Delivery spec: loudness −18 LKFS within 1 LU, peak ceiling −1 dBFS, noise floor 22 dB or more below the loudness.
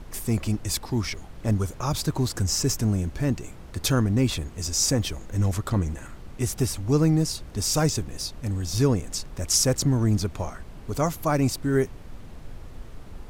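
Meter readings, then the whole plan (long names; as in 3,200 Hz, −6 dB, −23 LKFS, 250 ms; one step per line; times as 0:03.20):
background noise floor −42 dBFS; target noise floor −48 dBFS; integrated loudness −25.5 LKFS; sample peak −9.5 dBFS; target loudness −18.0 LKFS
→ noise reduction from a noise print 6 dB
level +7.5 dB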